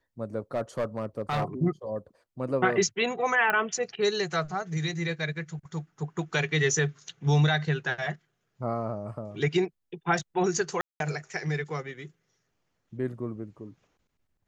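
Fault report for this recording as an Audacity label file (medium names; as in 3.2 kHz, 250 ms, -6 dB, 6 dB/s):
0.540000	1.440000	clipped -23 dBFS
3.500000	3.500000	pop -13 dBFS
10.810000	11.000000	dropout 192 ms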